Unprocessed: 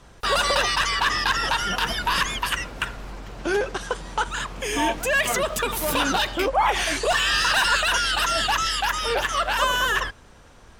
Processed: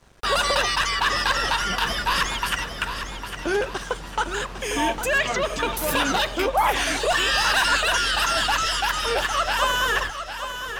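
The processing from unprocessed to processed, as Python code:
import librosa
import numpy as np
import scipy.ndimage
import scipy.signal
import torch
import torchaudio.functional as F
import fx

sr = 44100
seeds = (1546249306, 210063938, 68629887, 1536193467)

p1 = fx.lowpass(x, sr, hz=5900.0, slope=24, at=(5.18, 5.77))
p2 = np.sign(p1) * np.maximum(np.abs(p1) - 10.0 ** (-51.0 / 20.0), 0.0)
y = p2 + fx.echo_feedback(p2, sr, ms=804, feedback_pct=39, wet_db=-9.5, dry=0)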